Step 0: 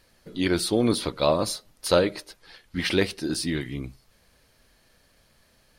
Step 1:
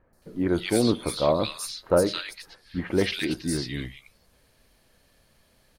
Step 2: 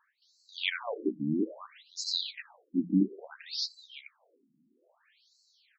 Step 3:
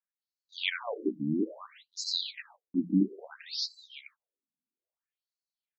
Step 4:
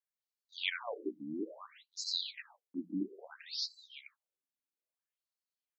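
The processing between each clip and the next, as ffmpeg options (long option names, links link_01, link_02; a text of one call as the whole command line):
ffmpeg -i in.wav -filter_complex "[0:a]acrossover=split=1600|5400[link_01][link_02][link_03];[link_03]adelay=130[link_04];[link_02]adelay=220[link_05];[link_01][link_05][link_04]amix=inputs=3:normalize=0" out.wav
ffmpeg -i in.wav -af "afftfilt=real='re*between(b*sr/1024,220*pow(5700/220,0.5+0.5*sin(2*PI*0.6*pts/sr))/1.41,220*pow(5700/220,0.5+0.5*sin(2*PI*0.6*pts/sr))*1.41)':imag='im*between(b*sr/1024,220*pow(5700/220,0.5+0.5*sin(2*PI*0.6*pts/sr))/1.41,220*pow(5700/220,0.5+0.5*sin(2*PI*0.6*pts/sr))*1.41)':win_size=1024:overlap=0.75,volume=4dB" out.wav
ffmpeg -i in.wav -af "agate=range=-32dB:threshold=-55dB:ratio=16:detection=peak" out.wav
ffmpeg -i in.wav -af "highpass=380,volume=-4dB" out.wav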